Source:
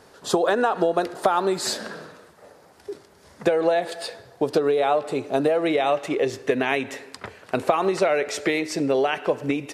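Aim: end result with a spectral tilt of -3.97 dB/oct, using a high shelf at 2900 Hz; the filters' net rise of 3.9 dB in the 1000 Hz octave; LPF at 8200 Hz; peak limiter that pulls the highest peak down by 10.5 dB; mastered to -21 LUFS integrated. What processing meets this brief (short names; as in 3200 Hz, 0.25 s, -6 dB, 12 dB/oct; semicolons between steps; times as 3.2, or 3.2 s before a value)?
LPF 8200 Hz; bell 1000 Hz +6.5 dB; high shelf 2900 Hz -7.5 dB; gain +3 dB; limiter -9.5 dBFS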